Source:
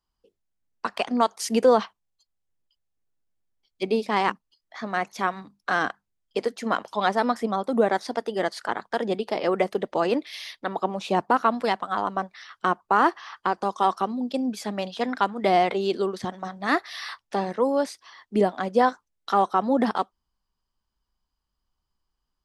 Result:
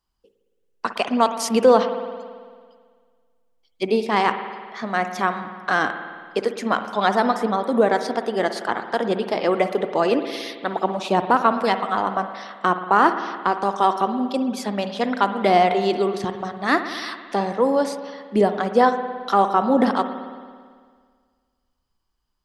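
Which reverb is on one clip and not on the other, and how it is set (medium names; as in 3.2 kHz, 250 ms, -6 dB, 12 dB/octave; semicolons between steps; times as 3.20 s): spring tank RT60 1.8 s, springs 55 ms, chirp 70 ms, DRR 8.5 dB; trim +3.5 dB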